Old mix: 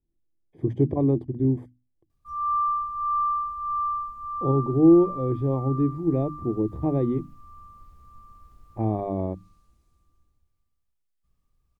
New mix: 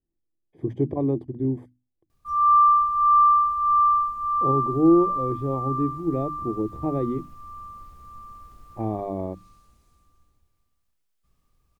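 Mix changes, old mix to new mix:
background +8.5 dB; master: add low shelf 180 Hz -6.5 dB

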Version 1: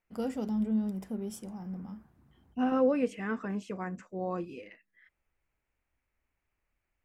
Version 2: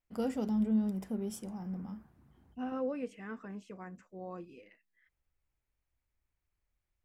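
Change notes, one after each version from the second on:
second voice -9.5 dB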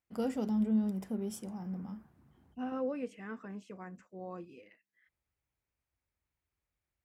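master: add HPF 69 Hz

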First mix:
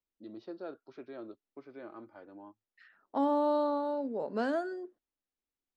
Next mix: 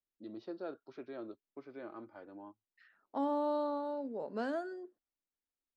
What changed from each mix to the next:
second voice -5.0 dB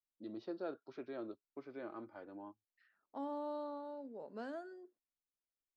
second voice -8.5 dB

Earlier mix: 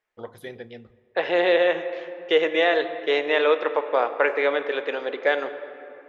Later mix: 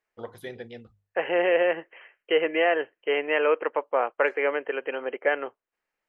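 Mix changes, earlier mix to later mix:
second voice: add brick-wall FIR low-pass 3200 Hz; reverb: off

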